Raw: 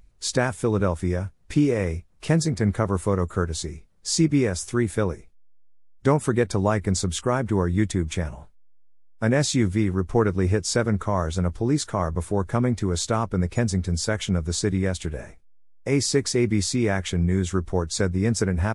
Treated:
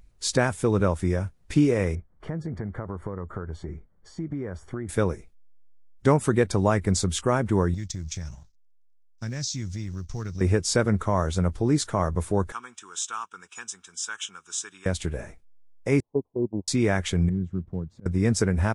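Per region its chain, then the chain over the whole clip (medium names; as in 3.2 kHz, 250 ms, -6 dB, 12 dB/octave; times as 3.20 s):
1.95–4.89 s: compression 12:1, threshold -27 dBFS + Savitzky-Golay filter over 41 samples
7.74–10.41 s: companding laws mixed up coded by A + FFT filter 130 Hz 0 dB, 330 Hz -11 dB, 490 Hz -15 dB, 2.9 kHz -4 dB, 5.9 kHz +12 dB, 9.7 kHz -11 dB + compression 3:1, threshold -30 dBFS
12.52–14.86 s: high-pass 1.2 kHz + static phaser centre 3 kHz, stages 8
16.00–16.68 s: gate -21 dBFS, range -24 dB + Chebyshev low-pass 1 kHz, order 6 + tilt EQ +2 dB/octave
17.29–18.06 s: block-companded coder 5-bit + band-pass filter 150 Hz, Q 1.8 + slow attack 215 ms
whole clip: none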